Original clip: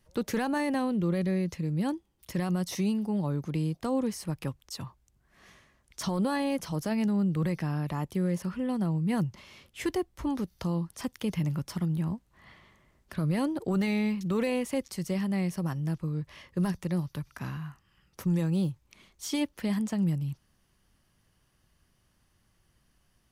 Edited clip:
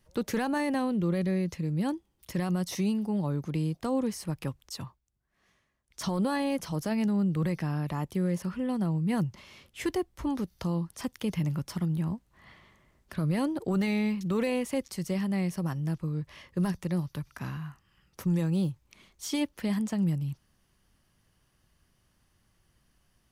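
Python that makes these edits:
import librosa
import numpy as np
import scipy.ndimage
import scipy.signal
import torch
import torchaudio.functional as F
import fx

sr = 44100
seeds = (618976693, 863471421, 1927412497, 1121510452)

y = fx.edit(x, sr, fx.fade_down_up(start_s=4.83, length_s=1.21, db=-13.0, fade_s=0.17), tone=tone)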